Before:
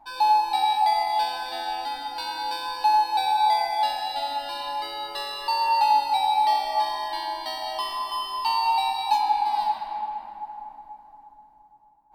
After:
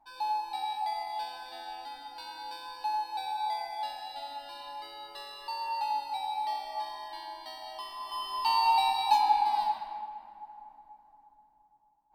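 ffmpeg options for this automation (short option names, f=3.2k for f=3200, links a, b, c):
-af "volume=-2dB,afade=t=in:st=7.96:d=0.63:silence=0.316228,afade=t=out:st=9.33:d=0.77:silence=0.375837"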